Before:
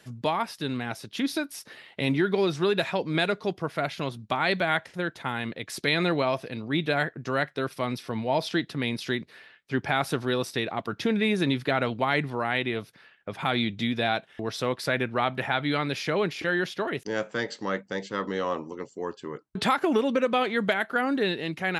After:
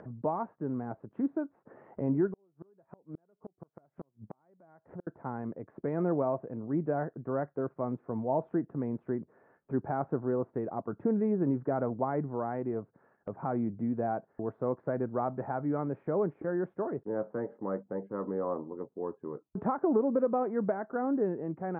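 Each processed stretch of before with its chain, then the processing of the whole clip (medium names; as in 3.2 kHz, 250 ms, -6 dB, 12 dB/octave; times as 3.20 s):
2.27–5.07 s: inverted gate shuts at -19 dBFS, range -41 dB + compression 1.5:1, threshold -42 dBFS
whole clip: Bessel low-pass 710 Hz, order 6; bass shelf 140 Hz -6.5 dB; upward compressor, threshold -39 dBFS; trim -1 dB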